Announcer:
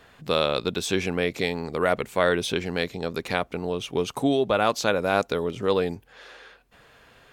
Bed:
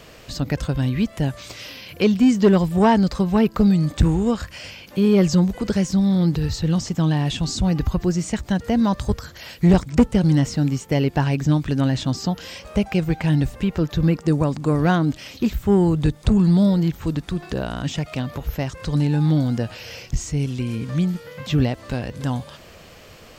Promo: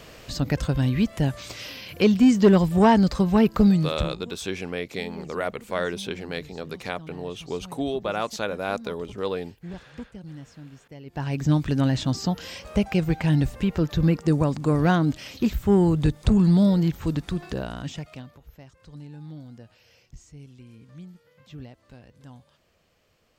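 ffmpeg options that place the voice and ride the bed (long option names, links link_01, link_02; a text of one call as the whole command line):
ffmpeg -i stem1.wav -i stem2.wav -filter_complex "[0:a]adelay=3550,volume=-5.5dB[link_01];[1:a]volume=20.5dB,afade=type=out:start_time=3.67:duration=0.49:silence=0.0749894,afade=type=in:start_time=11.05:duration=0.48:silence=0.0841395,afade=type=out:start_time=17.26:duration=1.12:silence=0.1[link_02];[link_01][link_02]amix=inputs=2:normalize=0" out.wav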